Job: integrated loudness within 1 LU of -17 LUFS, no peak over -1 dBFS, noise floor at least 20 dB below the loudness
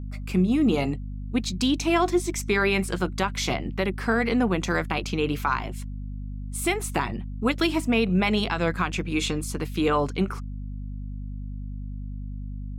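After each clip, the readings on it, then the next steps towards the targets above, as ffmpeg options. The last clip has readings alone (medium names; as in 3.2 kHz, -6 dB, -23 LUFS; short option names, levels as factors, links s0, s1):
hum 50 Hz; highest harmonic 250 Hz; hum level -31 dBFS; loudness -25.5 LUFS; peak level -11.0 dBFS; loudness target -17.0 LUFS
-> -af "bandreject=f=50:t=h:w=4,bandreject=f=100:t=h:w=4,bandreject=f=150:t=h:w=4,bandreject=f=200:t=h:w=4,bandreject=f=250:t=h:w=4"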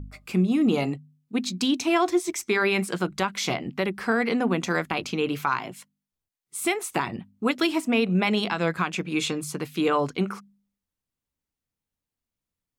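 hum not found; loudness -25.5 LUFS; peak level -11.0 dBFS; loudness target -17.0 LUFS
-> -af "volume=2.66"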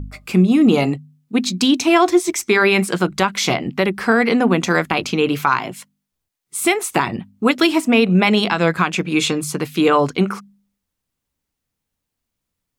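loudness -17.0 LUFS; peak level -2.5 dBFS; noise floor -80 dBFS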